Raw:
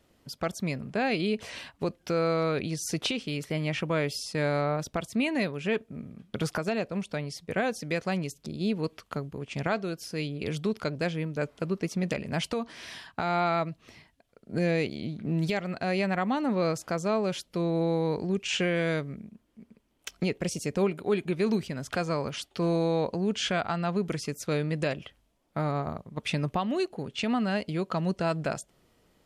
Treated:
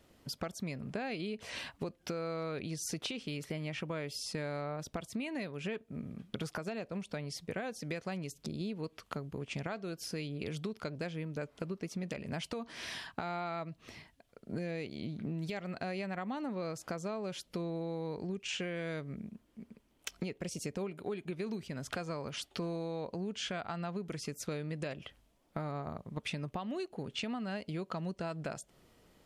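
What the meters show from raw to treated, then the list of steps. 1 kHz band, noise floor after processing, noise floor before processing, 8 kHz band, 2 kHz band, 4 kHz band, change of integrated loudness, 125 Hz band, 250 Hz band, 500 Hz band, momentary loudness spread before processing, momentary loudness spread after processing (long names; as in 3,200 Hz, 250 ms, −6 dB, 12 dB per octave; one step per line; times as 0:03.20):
−10.5 dB, −69 dBFS, −68 dBFS, −5.5 dB, −9.5 dB, −7.0 dB, −9.5 dB, −9.0 dB, −9.5 dB, −10.5 dB, 8 LU, 5 LU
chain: downward compressor 6 to 1, threshold −37 dBFS, peak gain reduction 15 dB
level +1 dB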